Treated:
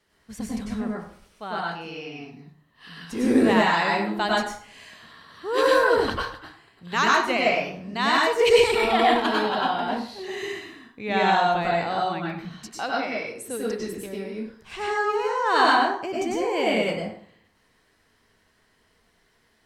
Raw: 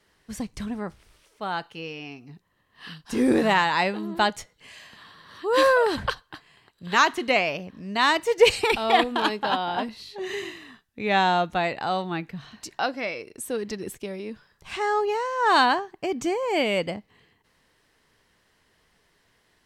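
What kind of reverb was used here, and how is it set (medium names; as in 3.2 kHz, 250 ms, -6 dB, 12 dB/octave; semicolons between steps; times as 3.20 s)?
plate-style reverb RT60 0.55 s, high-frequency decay 0.7×, pre-delay 85 ms, DRR -4 dB; trim -4.5 dB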